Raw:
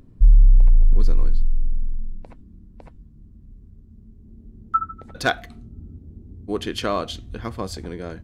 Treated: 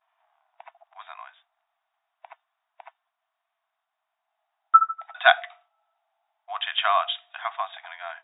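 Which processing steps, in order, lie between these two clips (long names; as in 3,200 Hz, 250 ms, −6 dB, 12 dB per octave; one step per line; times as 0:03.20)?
downward expander −44 dBFS
linear-phase brick-wall band-pass 640–3,800 Hz
level +6 dB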